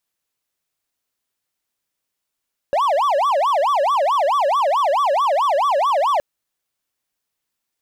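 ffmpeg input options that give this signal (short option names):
-f lavfi -i "aevalsrc='0.237*(1-4*abs(mod((854*t-306/(2*PI*4.6)*sin(2*PI*4.6*t))+0.25,1)-0.5))':d=3.47:s=44100"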